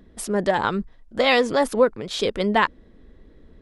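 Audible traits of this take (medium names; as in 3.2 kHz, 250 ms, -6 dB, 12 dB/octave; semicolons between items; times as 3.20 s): noise floor -52 dBFS; spectral tilt -2.5 dB/octave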